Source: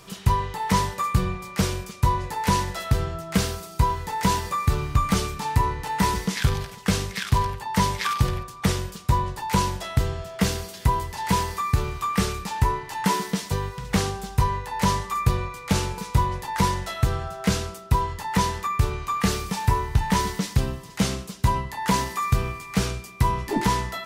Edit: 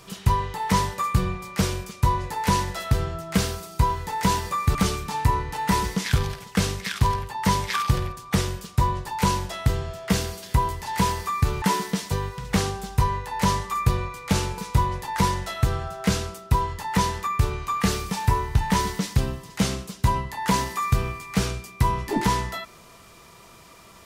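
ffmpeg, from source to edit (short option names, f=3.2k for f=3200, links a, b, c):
-filter_complex "[0:a]asplit=3[a][b][c];[a]atrim=end=4.752[d];[b]atrim=start=5.058:end=11.932[e];[c]atrim=start=13.018[f];[d][e]acrossfade=d=0.004:c1=hsin:c2=hsin[g];[g][f]acrossfade=d=0.004:c1=hsin:c2=hsin"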